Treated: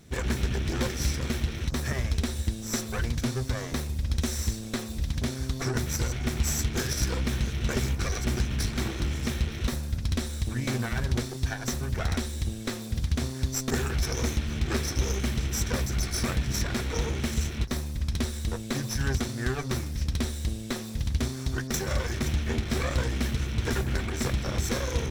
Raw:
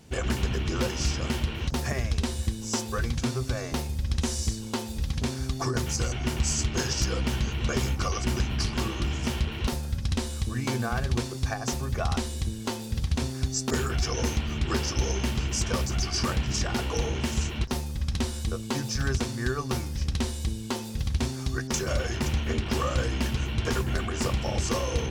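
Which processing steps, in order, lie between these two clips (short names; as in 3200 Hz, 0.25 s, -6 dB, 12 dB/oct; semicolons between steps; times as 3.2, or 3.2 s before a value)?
minimum comb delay 0.53 ms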